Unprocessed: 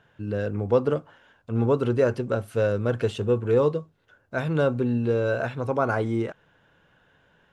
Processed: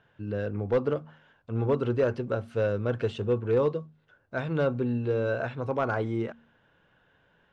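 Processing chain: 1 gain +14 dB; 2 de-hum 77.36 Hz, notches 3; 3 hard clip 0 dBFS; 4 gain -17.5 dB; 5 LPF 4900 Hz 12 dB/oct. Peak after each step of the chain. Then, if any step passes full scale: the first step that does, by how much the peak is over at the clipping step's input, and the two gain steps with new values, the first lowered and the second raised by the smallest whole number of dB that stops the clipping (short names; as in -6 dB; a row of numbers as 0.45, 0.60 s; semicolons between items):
+6.0, +6.0, 0.0, -17.5, -17.5 dBFS; step 1, 6.0 dB; step 1 +8 dB, step 4 -11.5 dB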